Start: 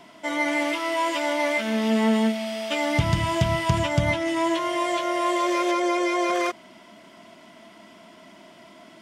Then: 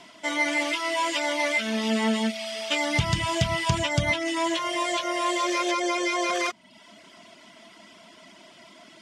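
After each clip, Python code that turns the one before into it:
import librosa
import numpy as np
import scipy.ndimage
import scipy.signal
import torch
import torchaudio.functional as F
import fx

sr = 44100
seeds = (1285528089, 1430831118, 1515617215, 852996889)

y = scipy.signal.sosfilt(scipy.signal.butter(2, 8400.0, 'lowpass', fs=sr, output='sos'), x)
y = fx.dereverb_blind(y, sr, rt60_s=0.63)
y = fx.high_shelf(y, sr, hz=2200.0, db=10.0)
y = y * 10.0 ** (-2.5 / 20.0)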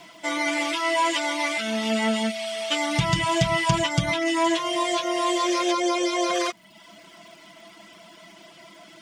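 y = x + 0.7 * np.pad(x, (int(6.0 * sr / 1000.0), 0))[:len(x)]
y = fx.dmg_crackle(y, sr, seeds[0], per_s=470.0, level_db=-50.0)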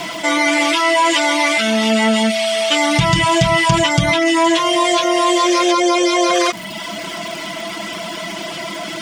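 y = fx.env_flatten(x, sr, amount_pct=50)
y = y * 10.0 ** (6.0 / 20.0)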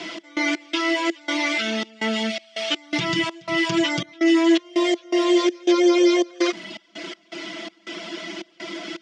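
y = fx.step_gate(x, sr, bpm=82, pattern='x.x.xx.xxx.x', floor_db=-24.0, edge_ms=4.5)
y = fx.cabinet(y, sr, low_hz=240.0, low_slope=12, high_hz=6200.0, hz=(340.0, 690.0, 1000.0), db=(9, -5, -8))
y = y * 10.0 ** (-6.5 / 20.0)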